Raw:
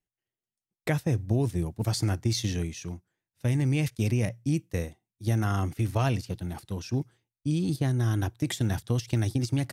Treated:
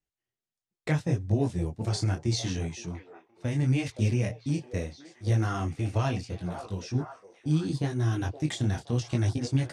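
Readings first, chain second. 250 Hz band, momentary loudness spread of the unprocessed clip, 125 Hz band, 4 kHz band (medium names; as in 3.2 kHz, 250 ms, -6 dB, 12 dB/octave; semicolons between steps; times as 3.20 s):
-1.0 dB, 9 LU, -0.5 dB, -1.0 dB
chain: low-pass 8.6 kHz 24 dB/octave; repeats whose band climbs or falls 519 ms, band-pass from 580 Hz, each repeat 0.7 oct, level -7.5 dB; detune thickener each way 26 cents; trim +2.5 dB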